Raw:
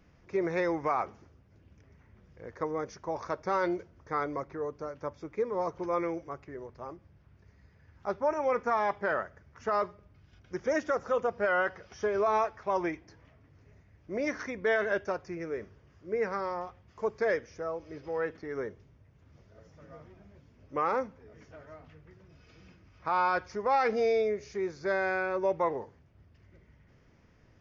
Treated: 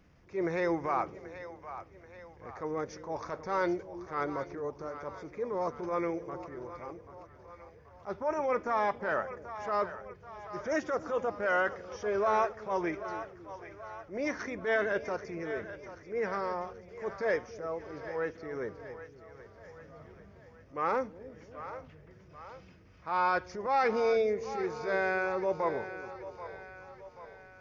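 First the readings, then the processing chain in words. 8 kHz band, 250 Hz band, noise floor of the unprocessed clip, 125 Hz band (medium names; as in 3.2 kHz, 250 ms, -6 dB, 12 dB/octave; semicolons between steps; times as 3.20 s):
no reading, -0.5 dB, -62 dBFS, -0.5 dB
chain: transient shaper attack -8 dB, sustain 0 dB; two-band feedback delay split 470 Hz, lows 278 ms, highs 783 ms, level -12 dB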